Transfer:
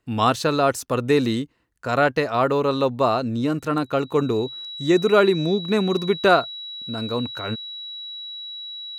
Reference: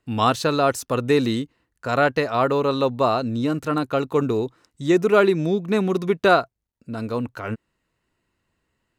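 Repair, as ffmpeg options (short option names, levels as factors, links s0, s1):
-af "bandreject=f=3900:w=30"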